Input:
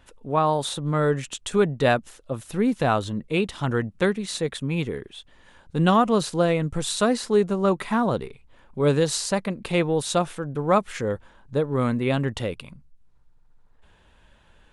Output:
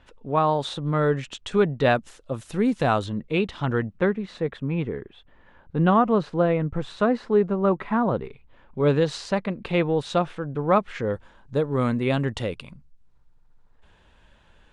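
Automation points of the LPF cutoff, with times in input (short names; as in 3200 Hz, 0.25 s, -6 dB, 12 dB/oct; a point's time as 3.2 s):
4400 Hz
from 1.95 s 8300 Hz
from 3.06 s 4000 Hz
from 3.98 s 1900 Hz
from 8.25 s 3400 Hz
from 11.14 s 8000 Hz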